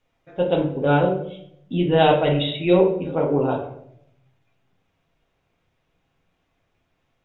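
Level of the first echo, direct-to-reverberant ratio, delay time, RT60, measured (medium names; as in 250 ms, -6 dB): no echo, -1.5 dB, no echo, 0.70 s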